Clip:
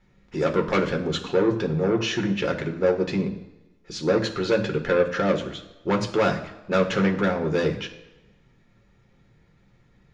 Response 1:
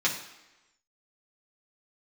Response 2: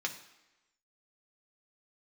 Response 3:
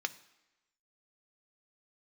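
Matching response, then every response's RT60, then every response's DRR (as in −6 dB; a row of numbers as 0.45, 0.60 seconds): 2; 1.0, 1.0, 1.0 seconds; −5.5, 1.5, 9.5 decibels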